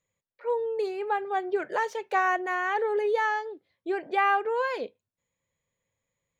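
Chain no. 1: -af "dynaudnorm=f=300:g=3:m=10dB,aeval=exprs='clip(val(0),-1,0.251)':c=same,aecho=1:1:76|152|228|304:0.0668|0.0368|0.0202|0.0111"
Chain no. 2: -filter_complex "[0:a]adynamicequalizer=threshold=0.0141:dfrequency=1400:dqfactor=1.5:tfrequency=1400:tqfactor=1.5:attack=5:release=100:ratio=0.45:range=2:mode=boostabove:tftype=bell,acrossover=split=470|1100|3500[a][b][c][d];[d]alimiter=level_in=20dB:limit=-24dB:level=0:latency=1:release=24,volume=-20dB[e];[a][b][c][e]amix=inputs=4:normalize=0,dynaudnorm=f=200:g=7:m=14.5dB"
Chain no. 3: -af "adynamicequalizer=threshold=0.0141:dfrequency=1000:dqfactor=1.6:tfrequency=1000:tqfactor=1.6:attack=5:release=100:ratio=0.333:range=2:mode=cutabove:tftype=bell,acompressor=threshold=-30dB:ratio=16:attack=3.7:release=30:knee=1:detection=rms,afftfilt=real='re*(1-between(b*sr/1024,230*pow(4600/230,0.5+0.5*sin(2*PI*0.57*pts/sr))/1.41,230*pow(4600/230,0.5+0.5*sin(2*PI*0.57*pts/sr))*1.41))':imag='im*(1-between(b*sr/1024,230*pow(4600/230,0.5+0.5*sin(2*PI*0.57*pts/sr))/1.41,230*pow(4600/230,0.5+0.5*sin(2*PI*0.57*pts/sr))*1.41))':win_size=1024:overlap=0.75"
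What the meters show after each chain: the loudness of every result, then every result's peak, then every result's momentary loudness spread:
-18.5, -15.5, -35.5 LUFS; -4.0, -1.5, -24.5 dBFS; 9, 13, 5 LU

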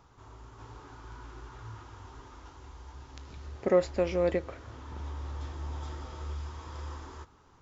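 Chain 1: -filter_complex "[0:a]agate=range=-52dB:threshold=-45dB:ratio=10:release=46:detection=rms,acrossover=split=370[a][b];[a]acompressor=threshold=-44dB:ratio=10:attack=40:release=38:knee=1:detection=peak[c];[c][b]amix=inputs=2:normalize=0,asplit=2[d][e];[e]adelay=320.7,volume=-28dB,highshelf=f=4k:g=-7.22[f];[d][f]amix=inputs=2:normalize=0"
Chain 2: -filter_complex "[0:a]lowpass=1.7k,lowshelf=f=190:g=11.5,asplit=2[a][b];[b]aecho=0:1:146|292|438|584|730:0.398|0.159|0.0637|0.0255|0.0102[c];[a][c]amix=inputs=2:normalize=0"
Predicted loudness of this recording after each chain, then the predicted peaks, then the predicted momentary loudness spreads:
-35.5, -31.5 LUFS; -15.0, -11.5 dBFS; 23, 17 LU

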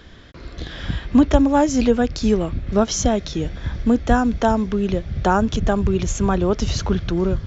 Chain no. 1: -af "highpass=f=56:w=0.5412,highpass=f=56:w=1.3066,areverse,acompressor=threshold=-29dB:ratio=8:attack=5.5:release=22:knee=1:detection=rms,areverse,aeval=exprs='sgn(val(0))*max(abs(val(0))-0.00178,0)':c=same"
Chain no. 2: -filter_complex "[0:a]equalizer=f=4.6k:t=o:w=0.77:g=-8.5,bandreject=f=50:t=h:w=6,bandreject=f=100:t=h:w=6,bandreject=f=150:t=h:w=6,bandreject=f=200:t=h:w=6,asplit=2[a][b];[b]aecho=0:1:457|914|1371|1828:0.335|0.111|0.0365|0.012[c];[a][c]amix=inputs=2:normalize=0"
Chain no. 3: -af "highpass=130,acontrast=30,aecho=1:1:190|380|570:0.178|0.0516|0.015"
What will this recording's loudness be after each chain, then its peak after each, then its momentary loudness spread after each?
-32.0, -20.0, -15.5 LUFS; -17.0, -2.5, -2.0 dBFS; 4, 9, 11 LU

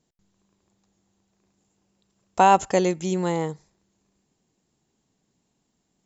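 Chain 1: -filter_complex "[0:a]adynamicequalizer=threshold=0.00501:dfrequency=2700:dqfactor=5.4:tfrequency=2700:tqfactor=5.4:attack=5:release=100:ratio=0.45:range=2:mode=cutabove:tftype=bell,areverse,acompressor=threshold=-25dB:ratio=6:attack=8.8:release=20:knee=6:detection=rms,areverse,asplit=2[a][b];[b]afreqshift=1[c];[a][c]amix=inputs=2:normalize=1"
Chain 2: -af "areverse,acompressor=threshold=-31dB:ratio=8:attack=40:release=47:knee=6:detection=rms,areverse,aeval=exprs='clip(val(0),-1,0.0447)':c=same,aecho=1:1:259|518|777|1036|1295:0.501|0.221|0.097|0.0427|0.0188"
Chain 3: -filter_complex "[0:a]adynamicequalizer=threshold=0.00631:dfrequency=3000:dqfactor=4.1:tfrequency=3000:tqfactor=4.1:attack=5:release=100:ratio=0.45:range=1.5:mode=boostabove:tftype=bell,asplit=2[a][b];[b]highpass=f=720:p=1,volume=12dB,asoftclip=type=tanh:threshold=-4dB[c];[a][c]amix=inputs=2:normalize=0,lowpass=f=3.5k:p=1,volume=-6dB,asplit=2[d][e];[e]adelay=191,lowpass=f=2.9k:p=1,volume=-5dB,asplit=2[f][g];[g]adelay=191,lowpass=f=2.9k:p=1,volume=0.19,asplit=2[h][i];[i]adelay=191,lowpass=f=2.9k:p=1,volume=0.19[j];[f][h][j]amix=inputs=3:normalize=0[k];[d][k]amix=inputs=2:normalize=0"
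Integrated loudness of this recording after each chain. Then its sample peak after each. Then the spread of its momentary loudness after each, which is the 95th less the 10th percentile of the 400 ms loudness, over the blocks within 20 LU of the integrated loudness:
-31.0, -33.0, -19.0 LUFS; -17.0, -18.5, -4.5 dBFS; 13, 17, 17 LU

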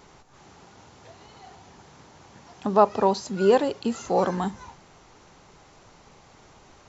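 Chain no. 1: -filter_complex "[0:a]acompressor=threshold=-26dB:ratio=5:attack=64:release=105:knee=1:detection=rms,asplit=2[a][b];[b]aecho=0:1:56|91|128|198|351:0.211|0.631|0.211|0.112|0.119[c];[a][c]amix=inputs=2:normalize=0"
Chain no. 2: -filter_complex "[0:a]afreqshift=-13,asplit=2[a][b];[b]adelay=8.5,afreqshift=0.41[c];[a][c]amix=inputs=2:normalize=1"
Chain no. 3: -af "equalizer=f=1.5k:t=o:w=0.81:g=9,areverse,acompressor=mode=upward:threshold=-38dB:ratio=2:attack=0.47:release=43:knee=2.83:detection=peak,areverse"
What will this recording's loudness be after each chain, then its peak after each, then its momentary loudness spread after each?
-27.0, -26.5, -22.0 LUFS; -11.5, -5.5, -2.0 dBFS; 21, 12, 11 LU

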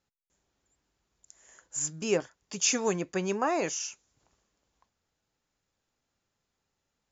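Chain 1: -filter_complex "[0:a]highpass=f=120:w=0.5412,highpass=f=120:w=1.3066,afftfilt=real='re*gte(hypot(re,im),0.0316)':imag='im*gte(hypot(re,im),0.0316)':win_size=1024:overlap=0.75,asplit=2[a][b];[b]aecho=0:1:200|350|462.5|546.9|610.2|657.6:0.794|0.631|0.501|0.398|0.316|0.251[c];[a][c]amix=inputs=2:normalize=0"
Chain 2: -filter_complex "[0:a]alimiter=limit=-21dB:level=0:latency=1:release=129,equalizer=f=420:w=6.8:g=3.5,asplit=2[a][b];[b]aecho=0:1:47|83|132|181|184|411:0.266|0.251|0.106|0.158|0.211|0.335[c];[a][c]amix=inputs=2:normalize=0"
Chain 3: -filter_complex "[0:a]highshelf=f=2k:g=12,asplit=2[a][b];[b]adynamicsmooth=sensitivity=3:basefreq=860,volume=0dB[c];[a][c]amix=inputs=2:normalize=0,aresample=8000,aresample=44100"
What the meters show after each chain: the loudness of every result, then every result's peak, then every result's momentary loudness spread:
-27.0, -31.5, -23.0 LUFS; -12.0, -17.5, -5.5 dBFS; 13, 10, 18 LU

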